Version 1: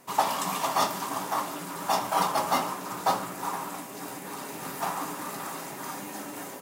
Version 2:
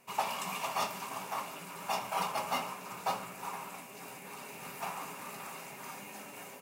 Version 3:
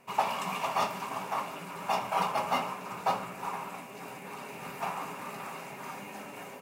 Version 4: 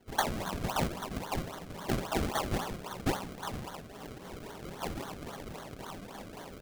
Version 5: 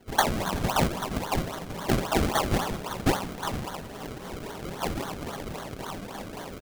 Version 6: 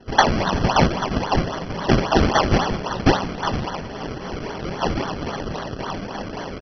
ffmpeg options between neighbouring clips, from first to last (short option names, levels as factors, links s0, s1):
-af "superequalizer=6b=0.398:12b=2.51,volume=0.376"
-af "highshelf=f=3700:g=-10,volume=1.88"
-af "acrusher=samples=34:mix=1:aa=0.000001:lfo=1:lforange=34:lforate=3.7,volume=0.794"
-af "aecho=1:1:378|756|1134|1512|1890:0.0891|0.0517|0.03|0.0174|0.0101,volume=2.24"
-af "volume=2.51" -ar 32000 -c:a mp2 -b:a 32k